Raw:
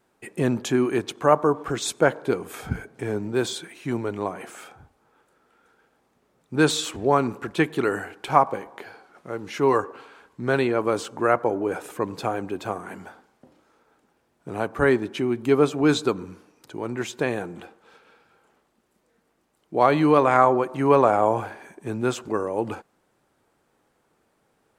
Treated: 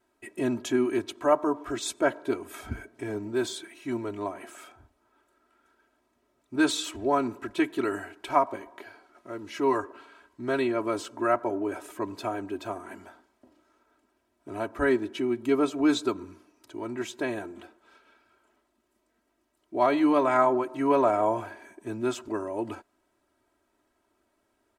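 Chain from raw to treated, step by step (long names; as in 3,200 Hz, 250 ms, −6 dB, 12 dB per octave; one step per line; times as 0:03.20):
comb filter 3.1 ms, depth 95%
level −7.5 dB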